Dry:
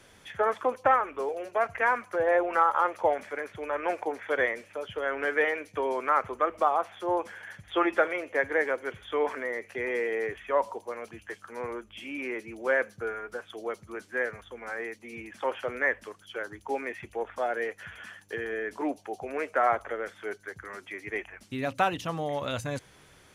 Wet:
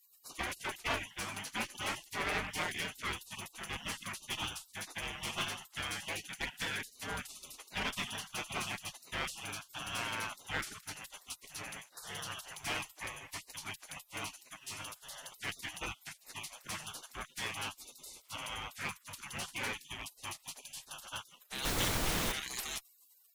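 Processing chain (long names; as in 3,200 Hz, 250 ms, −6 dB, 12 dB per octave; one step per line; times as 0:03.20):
gate on every frequency bin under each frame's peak −30 dB weak
asymmetric clip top −53 dBFS
0:21.64–0:22.31: background noise pink −49 dBFS
level +15.5 dB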